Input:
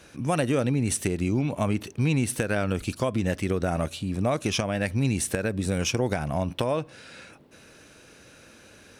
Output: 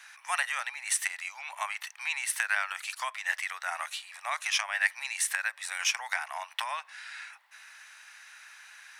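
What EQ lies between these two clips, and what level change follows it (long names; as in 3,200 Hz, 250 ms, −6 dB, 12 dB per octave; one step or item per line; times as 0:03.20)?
Butterworth high-pass 830 Hz 48 dB per octave
parametric band 1,900 Hz +10.5 dB 0.42 octaves
0.0 dB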